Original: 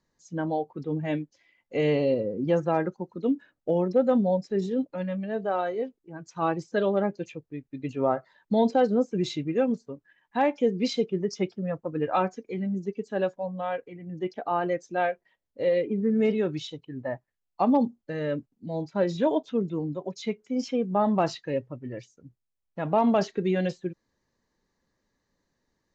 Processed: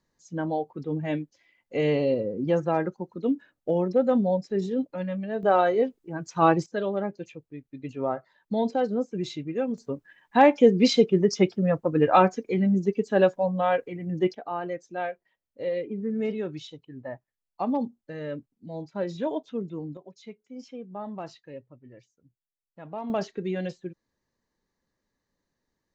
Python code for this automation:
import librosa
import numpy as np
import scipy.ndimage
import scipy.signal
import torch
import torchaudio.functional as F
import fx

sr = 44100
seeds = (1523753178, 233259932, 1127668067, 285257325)

y = fx.gain(x, sr, db=fx.steps((0.0, 0.0), (5.43, 7.0), (6.66, -3.5), (9.78, 7.0), (14.35, -5.0), (19.97, -13.0), (23.1, -4.5)))